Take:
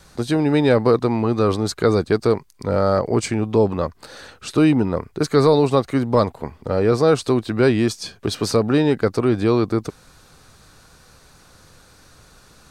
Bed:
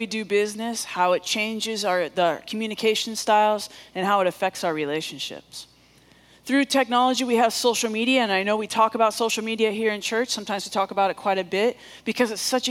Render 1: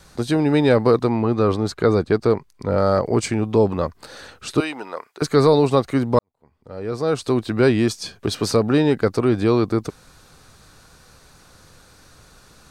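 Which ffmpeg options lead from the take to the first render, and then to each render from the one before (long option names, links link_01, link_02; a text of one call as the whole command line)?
ffmpeg -i in.wav -filter_complex "[0:a]asettb=1/sr,asplit=3[link_01][link_02][link_03];[link_01]atrim=end=1.094[link_04];[link_02]atrim=start=1.09:end=2.78,asetpts=PTS-STARTPTS,afade=type=in:duration=0.004:curve=qsin,afade=type=out:start_time=1.686:duration=0.004:curve=qsin,highshelf=frequency=4700:gain=-9.5[link_05];[link_03]atrim=start=2.776[link_06];[link_04][link_05]acrossfade=duration=0.004:curve1=hsin:curve2=qsin[link_07];[link_07][link_06]acrossfade=duration=0.004:curve1=qsin:curve2=hsin,asettb=1/sr,asplit=3[link_08][link_09][link_10];[link_08]atrim=end=4.604[link_11];[link_09]atrim=start=4.6:end=5.22,asetpts=PTS-STARTPTS,afade=type=in:duration=0.004:curve=qsin,afade=type=out:start_time=0.616:duration=0.004:curve=qsin,highpass=770[link_12];[link_10]atrim=start=5.216[link_13];[link_11][link_12]acrossfade=duration=0.004:curve1=hsin:curve2=qsin[link_14];[link_14][link_13]acrossfade=duration=0.004:curve1=qsin:curve2=hsin,asplit=2[link_15][link_16];[link_15]atrim=end=6.19,asetpts=PTS-STARTPTS,afade=type=out:start_time=6.186:duration=0.004:curve=hsin[link_17];[link_16]atrim=start=6.19,asetpts=PTS-STARTPTS,afade=type=in:duration=1.23:curve=qua[link_18];[link_17][link_18]concat=n=2:v=0:a=1" out.wav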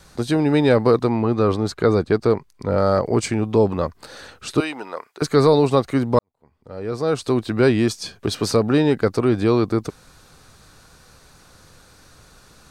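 ffmpeg -i in.wav -af anull out.wav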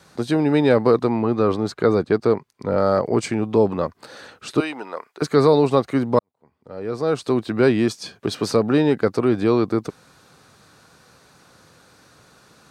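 ffmpeg -i in.wav -af "highpass=130,highshelf=frequency=4300:gain=-5.5" out.wav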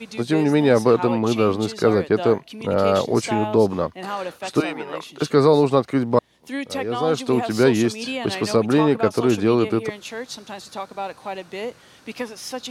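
ffmpeg -i in.wav -i bed.wav -filter_complex "[1:a]volume=-8dB[link_01];[0:a][link_01]amix=inputs=2:normalize=0" out.wav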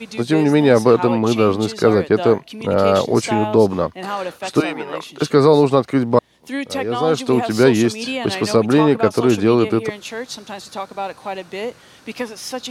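ffmpeg -i in.wav -af "volume=3.5dB,alimiter=limit=-1dB:level=0:latency=1" out.wav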